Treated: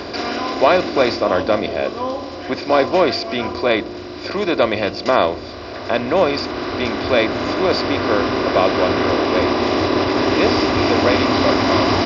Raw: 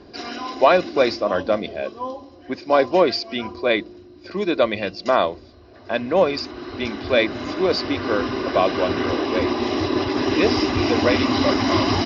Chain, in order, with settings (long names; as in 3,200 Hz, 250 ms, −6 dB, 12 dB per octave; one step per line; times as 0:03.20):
compressor on every frequency bin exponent 0.6
one half of a high-frequency compander encoder only
level −1 dB